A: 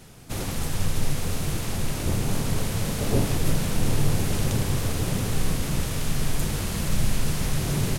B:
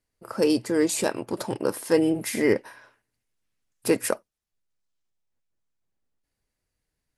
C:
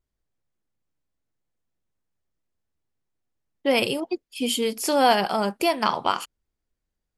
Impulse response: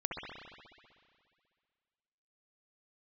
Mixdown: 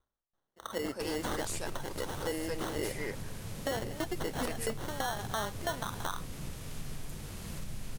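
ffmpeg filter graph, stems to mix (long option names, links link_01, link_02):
-filter_complex "[0:a]alimiter=limit=-15dB:level=0:latency=1:release=409,adelay=700,volume=-14dB[link_01];[1:a]highpass=frequency=1100:poles=1,adelay=350,volume=-3.5dB,asplit=2[link_02][link_03];[link_03]volume=-5.5dB[link_04];[2:a]equalizer=frequency=1200:width_type=o:width=2.2:gain=13,acompressor=threshold=-18dB:ratio=5,aeval=exprs='val(0)*pow(10,-24*if(lt(mod(3*n/s,1),2*abs(3)/1000),1-mod(3*n/s,1)/(2*abs(3)/1000),(mod(3*n/s,1)-2*abs(3)/1000)/(1-2*abs(3)/1000))/20)':channel_layout=same,volume=-1.5dB[link_05];[link_02][link_05]amix=inputs=2:normalize=0,acrusher=samples=18:mix=1:aa=0.000001,alimiter=limit=-22.5dB:level=0:latency=1:release=26,volume=0dB[link_06];[link_04]aecho=0:1:225:1[link_07];[link_01][link_06][link_07]amix=inputs=3:normalize=0,acompressor=threshold=-32dB:ratio=2"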